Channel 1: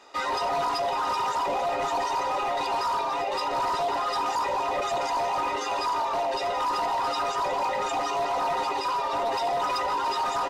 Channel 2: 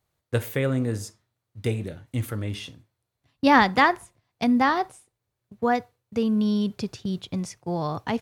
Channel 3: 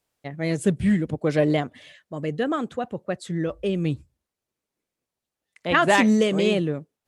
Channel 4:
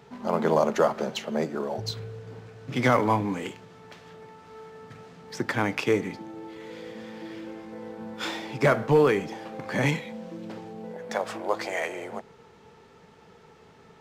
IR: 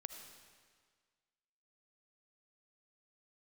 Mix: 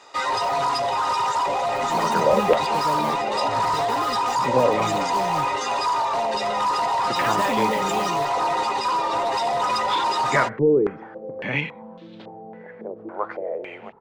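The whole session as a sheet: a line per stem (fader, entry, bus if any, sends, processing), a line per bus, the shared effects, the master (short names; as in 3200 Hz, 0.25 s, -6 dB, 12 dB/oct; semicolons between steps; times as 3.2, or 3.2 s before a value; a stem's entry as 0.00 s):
-3.0 dB, 0.00 s, no send, graphic EQ 125/500/1000/2000/4000/8000 Hz +11/+4/+6/+5/+5/+9 dB
-19.5 dB, 0.00 s, no send, dry
-9.5 dB, 1.50 s, no send, bit-crush 5-bit
-4.0 dB, 1.70 s, no send, stepped low-pass 3.6 Hz 380–3700 Hz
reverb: off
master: dry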